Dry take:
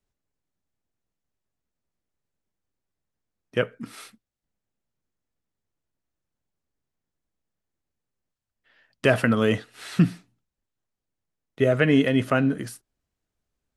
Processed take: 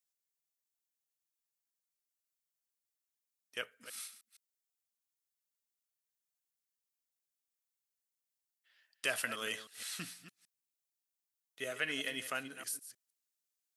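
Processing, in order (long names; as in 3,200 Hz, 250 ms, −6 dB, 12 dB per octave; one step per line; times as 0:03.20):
delay that plays each chunk backwards 156 ms, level −12 dB
first difference
level +1 dB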